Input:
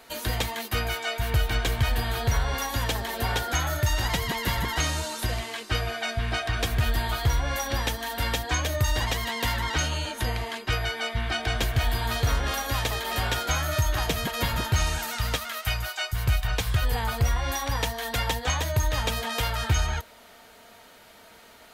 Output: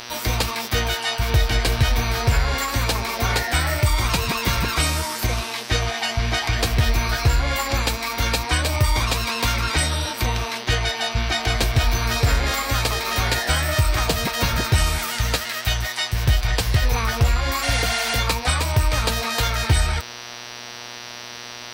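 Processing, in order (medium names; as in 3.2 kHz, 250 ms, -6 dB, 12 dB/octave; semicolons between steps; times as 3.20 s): mains buzz 120 Hz, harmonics 40, -42 dBFS 0 dB/octave; formant shift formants +4 st; spectral replace 17.65–18.13 s, 610–11000 Hz after; trim +5.5 dB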